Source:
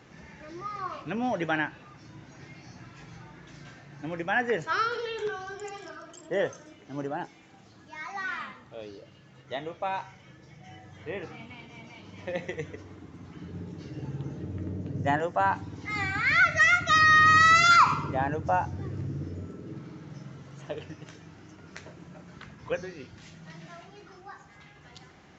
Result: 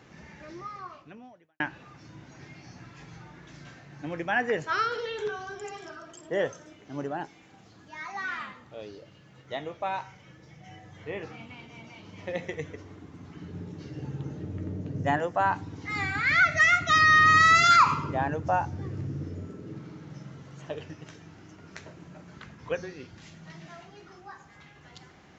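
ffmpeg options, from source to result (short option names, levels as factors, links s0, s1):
-filter_complex "[0:a]asplit=2[s0][s1];[s0]atrim=end=1.6,asetpts=PTS-STARTPTS,afade=t=out:st=0.5:d=1.1:c=qua[s2];[s1]atrim=start=1.6,asetpts=PTS-STARTPTS,afade=t=in:d=0.004:c=hsin[s3];[s2][s3]concat=n=2:v=0:a=1"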